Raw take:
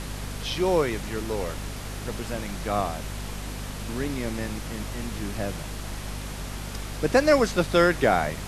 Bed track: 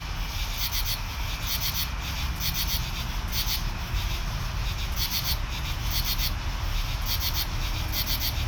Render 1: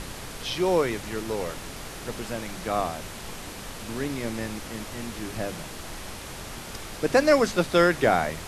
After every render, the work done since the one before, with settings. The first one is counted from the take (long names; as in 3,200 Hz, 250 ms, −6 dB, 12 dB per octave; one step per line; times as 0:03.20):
mains-hum notches 50/100/150/200/250 Hz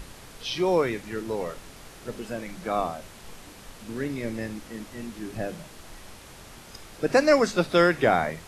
noise reduction from a noise print 8 dB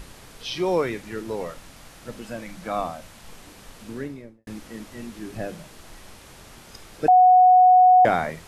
0:01.47–0:03.32: parametric band 400 Hz −10.5 dB 0.26 octaves
0:03.85–0:04.47: fade out and dull
0:07.08–0:08.05: beep over 735 Hz −10 dBFS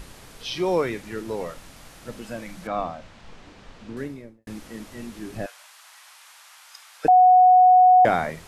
0:02.67–0:03.97: high-frequency loss of the air 130 metres
0:05.46–0:07.05: inverse Chebyshev high-pass filter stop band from 200 Hz, stop band 70 dB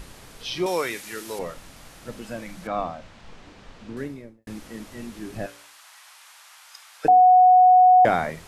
0:00.66–0:01.39: spectral tilt +3.5 dB per octave
0:05.39–0:07.22: hum removal 57.86 Hz, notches 10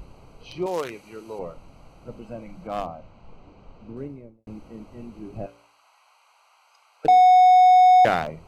adaptive Wiener filter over 25 samples
drawn EQ curve 150 Hz 0 dB, 240 Hz −3 dB, 3,800 Hz +6 dB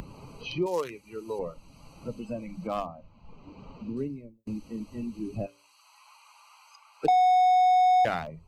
spectral dynamics exaggerated over time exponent 1.5
multiband upward and downward compressor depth 70%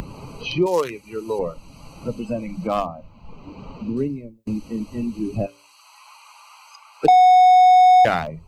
level +9 dB